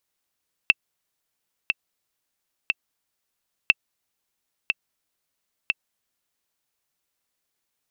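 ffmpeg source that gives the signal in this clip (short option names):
-f lavfi -i "aevalsrc='pow(10,(-1.5-6.5*gte(mod(t,3*60/60),60/60))/20)*sin(2*PI*2670*mod(t,60/60))*exp(-6.91*mod(t,60/60)/0.03)':d=6:s=44100"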